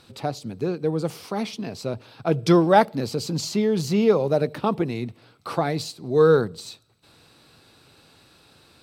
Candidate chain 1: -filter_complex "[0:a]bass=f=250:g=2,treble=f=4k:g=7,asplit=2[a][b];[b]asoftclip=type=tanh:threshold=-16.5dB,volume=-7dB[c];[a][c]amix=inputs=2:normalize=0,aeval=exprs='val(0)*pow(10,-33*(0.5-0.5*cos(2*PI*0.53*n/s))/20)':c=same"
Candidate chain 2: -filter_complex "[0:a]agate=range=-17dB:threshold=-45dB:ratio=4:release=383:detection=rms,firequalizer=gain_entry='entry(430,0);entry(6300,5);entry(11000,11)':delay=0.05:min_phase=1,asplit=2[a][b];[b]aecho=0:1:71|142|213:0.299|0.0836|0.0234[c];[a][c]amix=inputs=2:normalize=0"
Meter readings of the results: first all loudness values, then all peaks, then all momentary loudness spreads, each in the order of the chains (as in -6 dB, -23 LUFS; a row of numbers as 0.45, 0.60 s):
-26.0, -22.0 LUFS; -7.0, -2.0 dBFS; 21, 14 LU